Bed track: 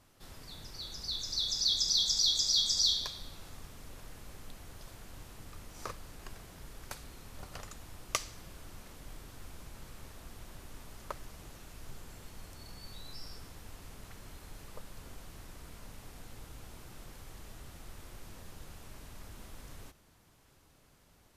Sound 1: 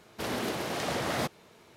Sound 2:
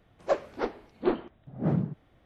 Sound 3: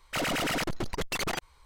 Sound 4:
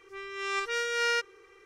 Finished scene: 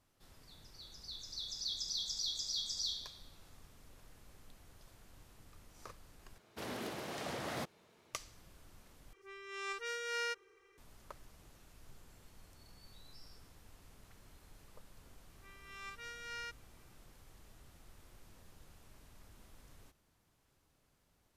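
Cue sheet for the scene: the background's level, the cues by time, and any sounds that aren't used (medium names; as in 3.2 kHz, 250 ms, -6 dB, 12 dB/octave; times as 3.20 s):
bed track -10.5 dB
6.38 s: replace with 1 -10 dB
9.13 s: replace with 4 -10.5 dB + treble shelf 10 kHz +7 dB
15.30 s: add 4 -16.5 dB + high-pass 700 Hz
not used: 2, 3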